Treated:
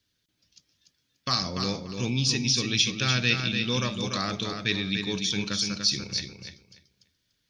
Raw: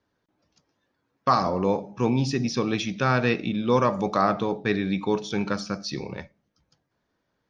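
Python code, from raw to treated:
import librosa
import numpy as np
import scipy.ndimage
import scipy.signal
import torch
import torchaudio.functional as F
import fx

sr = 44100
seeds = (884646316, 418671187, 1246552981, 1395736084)

p1 = fx.curve_eq(x, sr, hz=(100.0, 900.0, 3300.0), db=(0, -16, 10))
y = p1 + fx.echo_feedback(p1, sr, ms=292, feedback_pct=19, wet_db=-6, dry=0)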